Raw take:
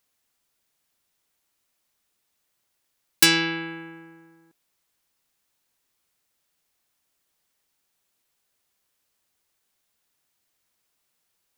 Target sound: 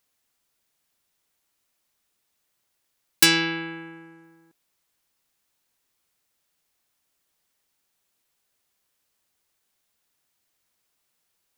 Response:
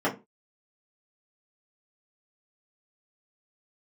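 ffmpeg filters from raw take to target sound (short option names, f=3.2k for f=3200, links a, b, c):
-filter_complex "[0:a]asettb=1/sr,asplit=3[a][b][c];[a]atrim=end=3.424[d];[b]atrim=start=3.42:end=4.24,asetpts=PTS-STARTPTS,afade=t=in:d=0.004:c=qsin,afade=t=out:st=0.816:d=0.004:c=qsin,lowpass=12k[e];[c]atrim=start=4.236[f];[d][e]acrossfade=d=0.004:c1=hsin:c2=qsin[g];[g][f]acrossfade=d=0.004:c1=qsin:c2=hsin"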